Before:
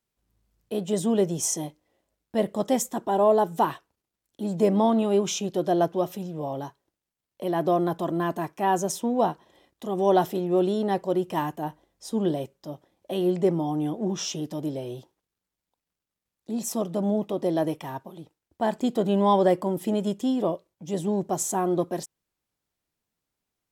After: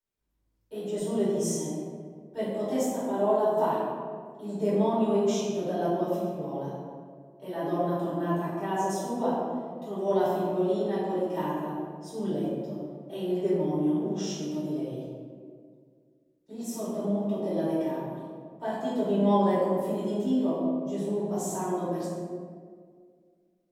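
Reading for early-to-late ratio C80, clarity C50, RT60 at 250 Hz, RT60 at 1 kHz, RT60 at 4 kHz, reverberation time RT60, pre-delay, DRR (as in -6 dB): 0.5 dB, -1.5 dB, 2.5 s, 1.7 s, 0.95 s, 1.9 s, 3 ms, -12.0 dB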